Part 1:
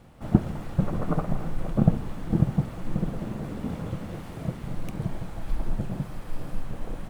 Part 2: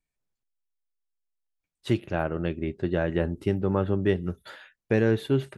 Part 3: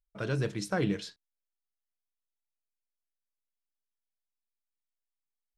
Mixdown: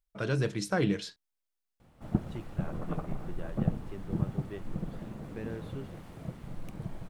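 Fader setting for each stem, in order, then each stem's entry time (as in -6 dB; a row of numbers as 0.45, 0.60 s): -9.0, -18.5, +1.5 dB; 1.80, 0.45, 0.00 s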